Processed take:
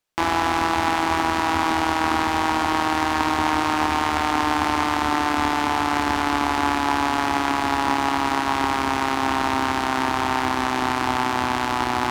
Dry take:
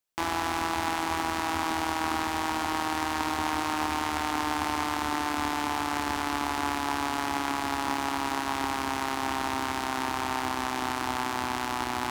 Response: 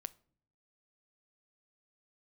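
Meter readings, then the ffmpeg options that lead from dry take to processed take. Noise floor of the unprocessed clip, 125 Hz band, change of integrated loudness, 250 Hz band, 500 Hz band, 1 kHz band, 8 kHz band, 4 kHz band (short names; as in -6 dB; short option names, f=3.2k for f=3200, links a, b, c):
-32 dBFS, +8.5 dB, +8.0 dB, +8.0 dB, +8.5 dB, +8.0 dB, +3.0 dB, +6.0 dB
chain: -filter_complex "[0:a]highshelf=f=6.8k:g=-10,asplit=2[a][b];[1:a]atrim=start_sample=2205,asetrate=37044,aresample=44100[c];[b][c]afir=irnorm=-1:irlink=0,volume=2.5dB[d];[a][d]amix=inputs=2:normalize=0,volume=2.5dB"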